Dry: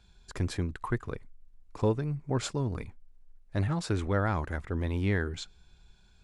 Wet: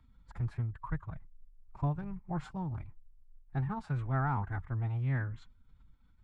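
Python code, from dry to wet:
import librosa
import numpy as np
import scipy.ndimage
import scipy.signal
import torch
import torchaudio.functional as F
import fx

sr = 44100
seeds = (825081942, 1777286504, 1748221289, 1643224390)

y = fx.curve_eq(x, sr, hz=(110.0, 420.0, 650.0, 1300.0, 5500.0), db=(0, -21, -4, -6, -24))
y = fx.pitch_keep_formants(y, sr, semitones=5.0)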